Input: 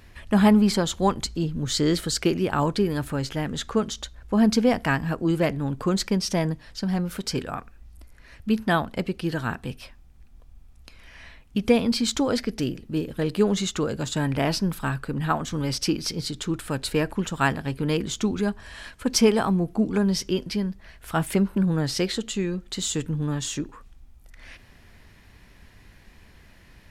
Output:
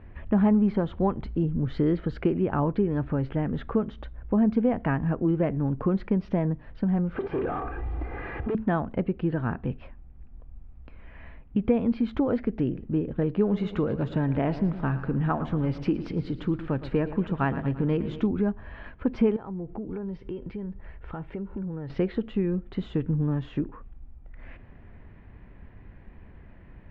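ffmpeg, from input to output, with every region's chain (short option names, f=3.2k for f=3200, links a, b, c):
-filter_complex "[0:a]asettb=1/sr,asplit=3[a][b][c];[a]atrim=end=7.164[d];[b]atrim=start=7.16:end=8.55,asetpts=PTS-STARTPTS,afade=t=in:d=0.004:c=qsin,afade=t=out:st=1.386:d=0.004:c=qsin,acompressor=threshold=-44dB:ratio=2.5:attack=3.2:release=140:knee=1:detection=peak,aecho=1:1:2.5:0.91,atrim=end_sample=61299,asplit=2[e][f];[f]highpass=f=720:p=1,volume=39dB,asoftclip=type=tanh:threshold=-21dB[g];[e][g]amix=inputs=2:normalize=0,lowpass=f=1.1k:p=1,volume=-6dB[h];[c]atrim=start=8.546[i];[d][h]acrossfade=d=0.004:c1=hsin:c2=qsin[j];[j][i]acrossfade=d=0.004:c1=qsin:c2=hsin,asettb=1/sr,asplit=3[k][l][m];[k]atrim=end=13.394[n];[l]atrim=start=13.39:end=18.27,asetpts=PTS-STARTPTS,afade=t=in:d=0.004:c=qsin,afade=t=out:st=4.876:d=0.004:c=qsin,aemphasis=mode=production:type=50fm,aecho=1:1:113|226|339|452|565|678:0.178|0.101|0.0578|0.0329|0.0188|0.0107,atrim=end_sample=215208[o];[m]atrim=start=18.266[p];[n][o]acrossfade=d=0.004:c1=hsin:c2=qsin[q];[q][p]acrossfade=d=0.004:c1=qsin:c2=hsin,asettb=1/sr,asplit=3[r][s][t];[r]atrim=end=19.364[u];[s]atrim=start=19.36:end=21.9,asetpts=PTS-STARTPTS,afade=t=in:d=0.004:c=qsin,afade=t=out:st=2.536:d=0.004:c=qsin,aecho=1:1:2.2:0.34,atrim=end_sample=112014,acompressor=threshold=-35dB:ratio=6:attack=3.2:release=140:knee=1:detection=peak[v];[t]atrim=start=21.896[w];[u][v]acrossfade=d=0.004:c1=hsin:c2=qsin[x];[x][w]acrossfade=d=0.004:c1=qsin:c2=hsin,lowpass=f=2.7k:w=0.5412,lowpass=f=2.7k:w=1.3066,tiltshelf=f=1.4k:g=7.5,acompressor=threshold=-21dB:ratio=2,volume=-3dB"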